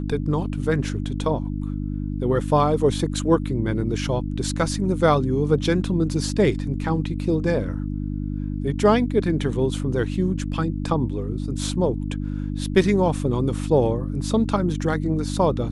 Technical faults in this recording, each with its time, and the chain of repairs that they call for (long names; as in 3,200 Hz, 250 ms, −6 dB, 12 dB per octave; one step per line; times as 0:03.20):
mains hum 50 Hz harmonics 6 −27 dBFS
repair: hum removal 50 Hz, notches 6